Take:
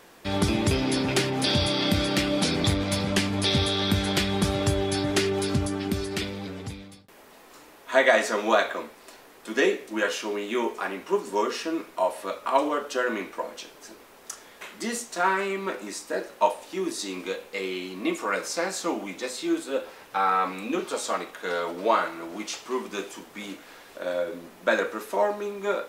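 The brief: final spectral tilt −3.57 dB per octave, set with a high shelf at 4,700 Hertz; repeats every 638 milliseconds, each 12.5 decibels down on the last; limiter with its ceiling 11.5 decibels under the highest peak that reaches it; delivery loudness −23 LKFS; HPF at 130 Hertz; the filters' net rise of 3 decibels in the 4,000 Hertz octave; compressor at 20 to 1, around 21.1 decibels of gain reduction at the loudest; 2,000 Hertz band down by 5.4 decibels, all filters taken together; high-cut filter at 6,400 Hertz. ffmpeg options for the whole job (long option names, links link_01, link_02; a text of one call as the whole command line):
ffmpeg -i in.wav -af "highpass=130,lowpass=6400,equalizer=frequency=2000:width_type=o:gain=-9,equalizer=frequency=4000:width_type=o:gain=5,highshelf=frequency=4700:gain=4,acompressor=threshold=-37dB:ratio=20,alimiter=level_in=10.5dB:limit=-24dB:level=0:latency=1,volume=-10.5dB,aecho=1:1:638|1276|1914:0.237|0.0569|0.0137,volume=20.5dB" out.wav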